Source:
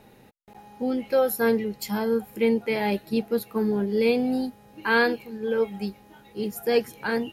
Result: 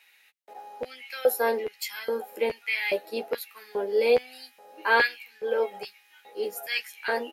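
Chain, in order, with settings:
Butterworth high-pass 160 Hz 96 dB per octave
auto-filter high-pass square 1.2 Hz 540–2,200 Hz
double-tracking delay 12 ms −5 dB
level −2 dB

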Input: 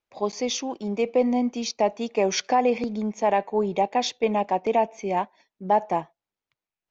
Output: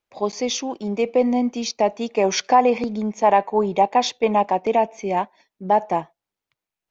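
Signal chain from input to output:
0:02.23–0:04.52: dynamic equaliser 1,000 Hz, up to +6 dB, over −36 dBFS, Q 1.7
level +3 dB

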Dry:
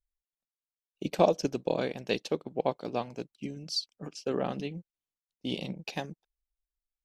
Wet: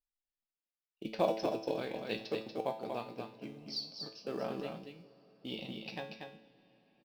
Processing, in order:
elliptic low-pass filter 5,300 Hz, stop band 40 dB
in parallel at −9 dB: floating-point word with a short mantissa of 2 bits
on the sum: low-shelf EQ 130 Hz −4.5 dB
tuned comb filter 110 Hz, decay 0.49 s, harmonics all, mix 80%
single-tap delay 237 ms −5.5 dB
on a send at −19 dB: convolution reverb RT60 5.7 s, pre-delay 36 ms
on the sum: level +1 dB

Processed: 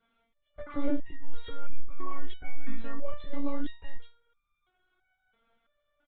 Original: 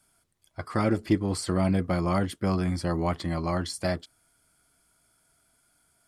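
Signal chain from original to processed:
brickwall limiter −19 dBFS, peak gain reduction 7.5 dB
double-tracking delay 20 ms −14 dB
one-pitch LPC vocoder at 8 kHz 280 Hz
dynamic equaliser 1,300 Hz, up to −3 dB, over −39 dBFS, Q 1.2
step-sequenced resonator 3 Hz 230–1,200 Hz
level +13 dB

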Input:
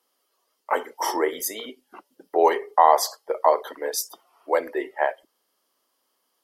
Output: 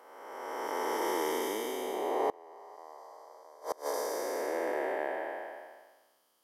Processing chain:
spectrum smeared in time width 848 ms
gate with flip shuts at −21 dBFS, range −26 dB
level +2.5 dB

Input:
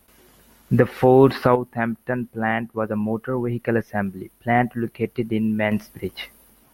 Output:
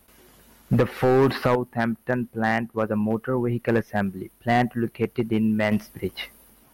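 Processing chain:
in parallel at −1 dB: brickwall limiter −10 dBFS, peak gain reduction 7 dB
on the sum: gain into a clipping stage and back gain 8 dB
level −5.5 dB

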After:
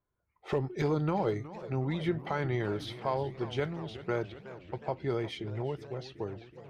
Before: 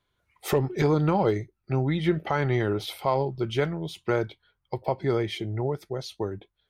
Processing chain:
low-pass that shuts in the quiet parts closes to 1,200 Hz, open at −23 dBFS
feedback echo with a swinging delay time 366 ms, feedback 72%, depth 175 cents, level −15.5 dB
level −7 dB

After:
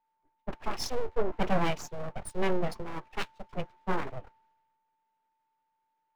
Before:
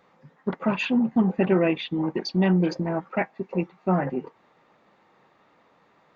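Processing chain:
full-wave rectification
steady tone 890 Hz −51 dBFS
multiband upward and downward expander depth 70%
level −6 dB

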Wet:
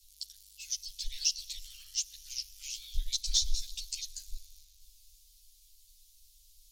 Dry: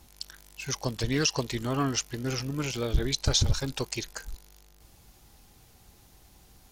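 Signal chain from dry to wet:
inverse Chebyshev band-stop filter 160–940 Hz, stop band 70 dB
in parallel at −11 dB: hard clipping −25 dBFS, distortion −10 dB
on the sum: dense smooth reverb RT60 4.6 s, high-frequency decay 0.75×, DRR 17.5 dB
string-ensemble chorus

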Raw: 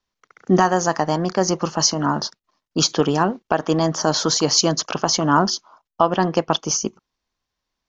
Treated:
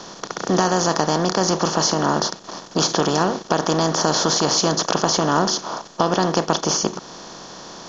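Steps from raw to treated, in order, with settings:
compressor on every frequency bin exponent 0.4
in parallel at +2 dB: downward compressor, threshold −22 dBFS, peak gain reduction 15 dB
on the sum: level −8.5 dB

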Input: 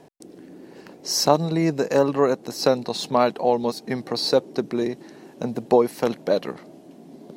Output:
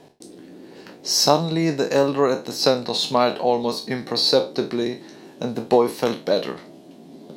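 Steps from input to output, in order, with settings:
peak hold with a decay on every bin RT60 0.30 s
parametric band 3,800 Hz +6.5 dB 0.85 octaves

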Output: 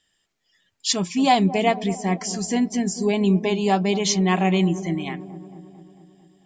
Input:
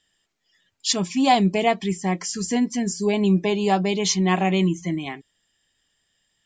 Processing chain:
delay with a low-pass on its return 223 ms, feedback 63%, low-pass 750 Hz, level −12.5 dB

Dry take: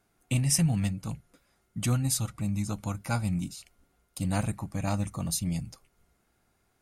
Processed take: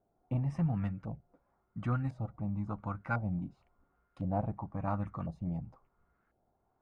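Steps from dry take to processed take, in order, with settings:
auto-filter low-pass saw up 0.95 Hz 630–1,600 Hz
level −6 dB

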